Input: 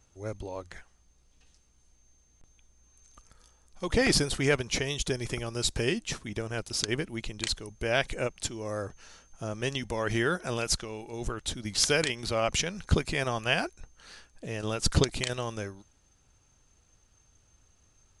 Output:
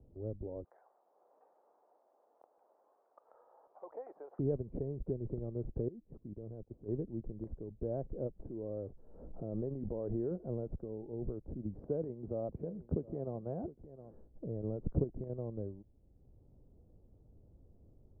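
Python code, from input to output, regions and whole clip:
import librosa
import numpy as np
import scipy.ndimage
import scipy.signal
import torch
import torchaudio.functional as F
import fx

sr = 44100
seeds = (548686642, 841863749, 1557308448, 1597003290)

y = fx.chain(x, sr, fx.highpass(hz=840.0, slope=24),
    fx.env_flatten(amount_pct=50), at=(0.64, 4.39))
y = fx.chain(y, sr, fx.level_steps(step_db=22),
    fx.notch(hz=1400.0, q=16.0), at=(5.88, 6.88))
y = fx.chain(y, sr, fx.peak_eq(hz=88.0, db=-5.5, octaves=2.9),
    fx.pre_swell(db_per_s=34.0), at=(8.39, 10.31))
y = fx.chain(y, sr, fx.highpass(hz=150.0, slope=6),
    fx.echo_single(ms=714, db=-18.5), at=(11.79, 14.13))
y = scipy.signal.sosfilt(scipy.signal.cheby2(4, 80, 3200.0, 'lowpass', fs=sr, output='sos'), y)
y = fx.band_squash(y, sr, depth_pct=40)
y = y * 10.0 ** (-4.5 / 20.0)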